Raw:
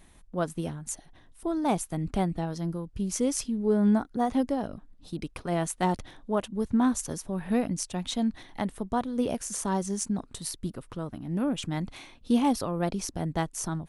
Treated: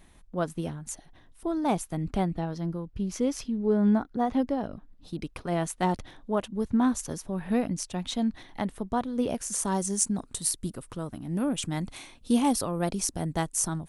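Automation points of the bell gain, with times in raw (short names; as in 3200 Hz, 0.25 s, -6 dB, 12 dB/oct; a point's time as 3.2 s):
bell 9100 Hz 1.1 oct
2.1 s -3 dB
2.58 s -12 dB
4.65 s -12 dB
5.2 s -2.5 dB
9.31 s -2.5 dB
9.76 s +9.5 dB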